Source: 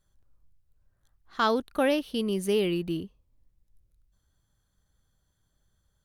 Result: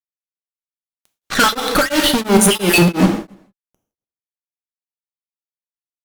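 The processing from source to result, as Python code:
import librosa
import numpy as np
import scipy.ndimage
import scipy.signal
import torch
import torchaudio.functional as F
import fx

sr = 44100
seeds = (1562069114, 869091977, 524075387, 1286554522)

y = fx.spec_dropout(x, sr, seeds[0], share_pct=40)
y = fx.over_compress(y, sr, threshold_db=-35.0, ratio=-0.5, at=(2.5, 3.04), fade=0.02)
y = fx.fuzz(y, sr, gain_db=49.0, gate_db=-53.0)
y = y + 10.0 ** (-21.5 / 20.0) * np.pad(y, (int(164 * sr / 1000.0), 0))[:len(y)]
y = fx.rev_gated(y, sr, seeds[1], gate_ms=310, shape='falling', drr_db=4.0)
y = y * np.abs(np.cos(np.pi * 2.9 * np.arange(len(y)) / sr))
y = F.gain(torch.from_numpy(y), 3.5).numpy()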